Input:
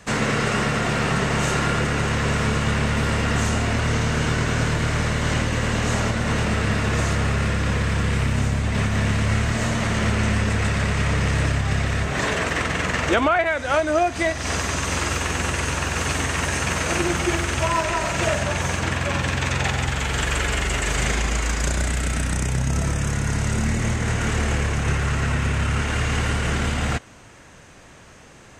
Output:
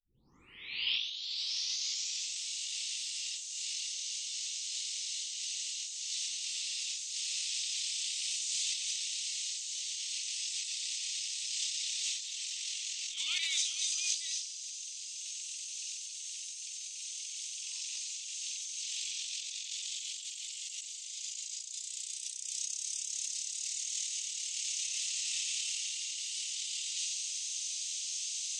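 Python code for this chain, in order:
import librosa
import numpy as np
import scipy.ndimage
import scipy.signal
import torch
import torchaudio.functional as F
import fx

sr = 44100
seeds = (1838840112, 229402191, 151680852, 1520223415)

p1 = fx.tape_start_head(x, sr, length_s=2.39)
p2 = scipy.signal.sosfilt(scipy.signal.cheby2(4, 40, 1700.0, 'highpass', fs=sr, output='sos'), p1)
p3 = p2 + fx.echo_feedback(p2, sr, ms=82, feedback_pct=60, wet_db=-20.5, dry=0)
p4 = fx.over_compress(p3, sr, threshold_db=-47.0, ratio=-1.0)
p5 = scipy.signal.sosfilt(scipy.signal.butter(4, 7300.0, 'lowpass', fs=sr, output='sos'), p4)
y = fx.tilt_eq(p5, sr, slope=4.0)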